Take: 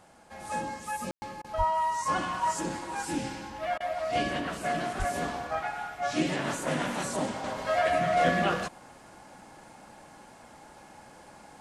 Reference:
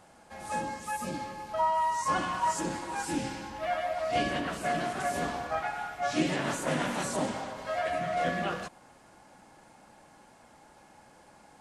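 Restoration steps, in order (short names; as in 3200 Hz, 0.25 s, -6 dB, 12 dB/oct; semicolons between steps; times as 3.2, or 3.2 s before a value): 1.57–1.69 HPF 140 Hz 24 dB/oct; 4.98–5.1 HPF 140 Hz 24 dB/oct; room tone fill 1.11–1.22; interpolate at 1.42/3.78, 22 ms; gain 0 dB, from 7.44 s -5.5 dB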